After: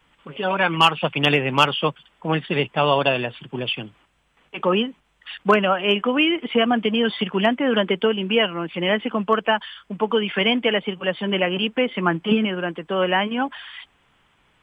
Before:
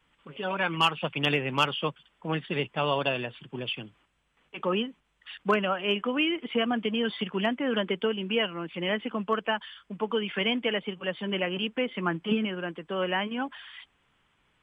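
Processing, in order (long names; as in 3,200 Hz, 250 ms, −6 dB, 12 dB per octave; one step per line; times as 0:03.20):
parametric band 750 Hz +2.5 dB
level +7.5 dB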